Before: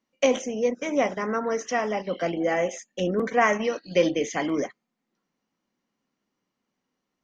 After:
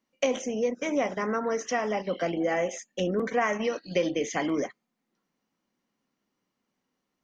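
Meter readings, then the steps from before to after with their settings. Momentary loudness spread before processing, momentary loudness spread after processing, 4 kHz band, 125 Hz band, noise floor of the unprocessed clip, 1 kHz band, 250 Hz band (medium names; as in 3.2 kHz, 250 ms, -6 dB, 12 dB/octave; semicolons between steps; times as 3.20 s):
7 LU, 3 LU, -2.5 dB, -2.0 dB, -82 dBFS, -4.0 dB, -2.5 dB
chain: compression 2.5:1, threshold -24 dBFS, peak gain reduction 6.5 dB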